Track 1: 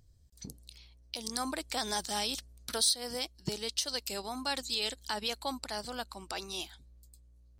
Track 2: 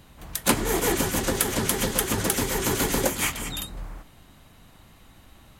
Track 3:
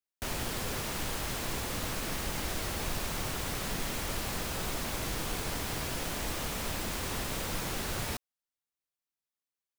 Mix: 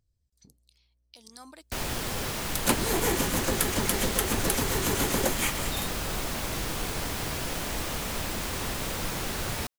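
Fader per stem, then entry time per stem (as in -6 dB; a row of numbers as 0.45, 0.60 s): -12.5, -3.5, +3.0 dB; 0.00, 2.20, 1.50 s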